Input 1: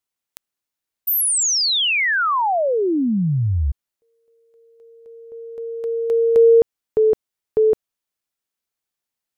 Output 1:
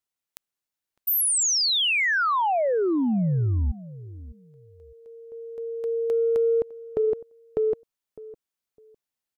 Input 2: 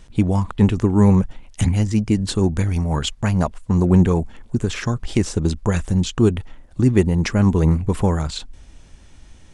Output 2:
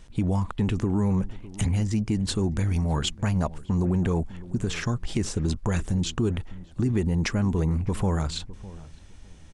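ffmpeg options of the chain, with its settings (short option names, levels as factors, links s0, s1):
-filter_complex "[0:a]acompressor=threshold=0.141:ratio=6:attack=4.7:release=63:knee=1:detection=peak,asplit=2[s0][s1];[s1]adelay=606,lowpass=f=870:p=1,volume=0.141,asplit=2[s2][s3];[s3]adelay=606,lowpass=f=870:p=1,volume=0.23[s4];[s2][s4]amix=inputs=2:normalize=0[s5];[s0][s5]amix=inputs=2:normalize=0,volume=0.668"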